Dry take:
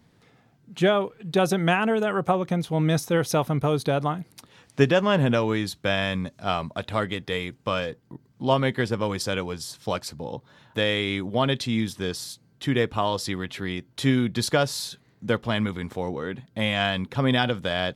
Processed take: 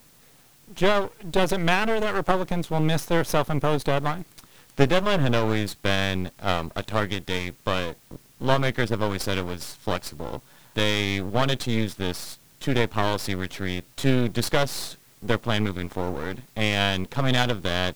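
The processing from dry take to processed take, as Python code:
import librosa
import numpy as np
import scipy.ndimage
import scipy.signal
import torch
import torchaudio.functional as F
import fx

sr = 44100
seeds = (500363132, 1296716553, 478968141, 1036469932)

y = np.maximum(x, 0.0)
y = fx.quant_dither(y, sr, seeds[0], bits=10, dither='triangular')
y = y * librosa.db_to_amplitude(3.5)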